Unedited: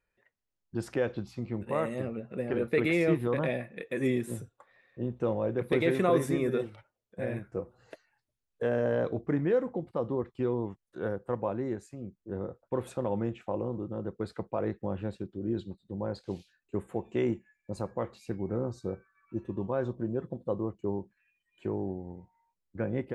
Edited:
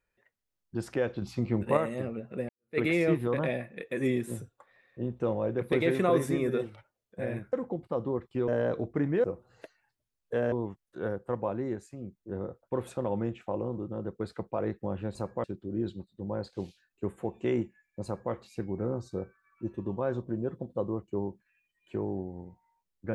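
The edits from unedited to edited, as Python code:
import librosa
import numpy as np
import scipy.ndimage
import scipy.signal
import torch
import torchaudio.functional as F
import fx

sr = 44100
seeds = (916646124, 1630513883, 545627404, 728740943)

y = fx.edit(x, sr, fx.clip_gain(start_s=1.22, length_s=0.55, db=6.0),
    fx.fade_in_span(start_s=2.49, length_s=0.29, curve='exp'),
    fx.swap(start_s=7.53, length_s=1.28, other_s=9.57, other_length_s=0.95),
    fx.duplicate(start_s=17.75, length_s=0.29, to_s=15.15), tone=tone)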